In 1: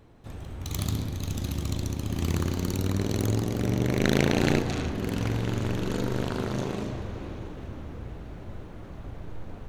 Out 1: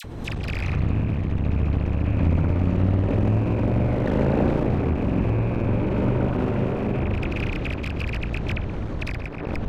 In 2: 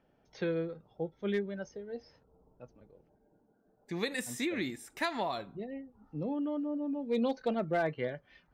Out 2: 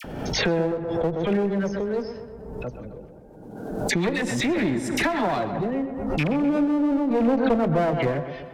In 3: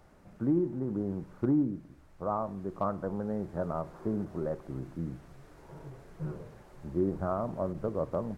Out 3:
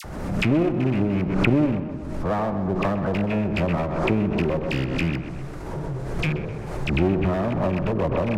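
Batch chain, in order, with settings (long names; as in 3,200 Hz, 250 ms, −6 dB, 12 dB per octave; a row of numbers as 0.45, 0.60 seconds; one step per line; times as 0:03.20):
loose part that buzzes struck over −35 dBFS, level −22 dBFS
treble cut that deepens with the level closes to 1,100 Hz, closed at −27 dBFS
low-shelf EQ 340 Hz +6 dB
downward compressor 1.5 to 1, threshold −44 dBFS
all-pass dispersion lows, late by 44 ms, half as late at 1,500 Hz
asymmetric clip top −40.5 dBFS
on a send: tape delay 126 ms, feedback 67%, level −9 dB, low-pass 2,500 Hz
on the sum: background raised ahead of every attack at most 40 dB per second
loudness normalisation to −24 LKFS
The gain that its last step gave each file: +13.0, +15.5, +15.0 decibels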